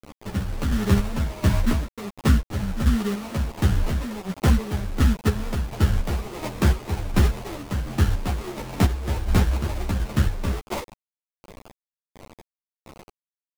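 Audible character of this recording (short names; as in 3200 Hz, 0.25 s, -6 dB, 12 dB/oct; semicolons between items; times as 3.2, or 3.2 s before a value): aliases and images of a low sample rate 1600 Hz, jitter 20%; chopped level 1.4 Hz, depth 60%, duty 40%; a quantiser's noise floor 6-bit, dither none; a shimmering, thickened sound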